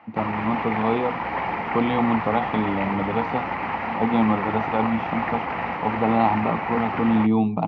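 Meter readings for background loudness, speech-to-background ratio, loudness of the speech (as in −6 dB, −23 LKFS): −27.5 LKFS, 3.0 dB, −24.5 LKFS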